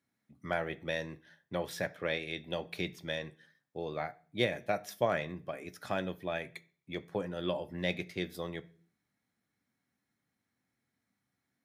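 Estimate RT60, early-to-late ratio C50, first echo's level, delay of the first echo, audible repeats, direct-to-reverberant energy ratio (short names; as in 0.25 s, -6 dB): 0.45 s, 21.0 dB, none, none, none, 10.5 dB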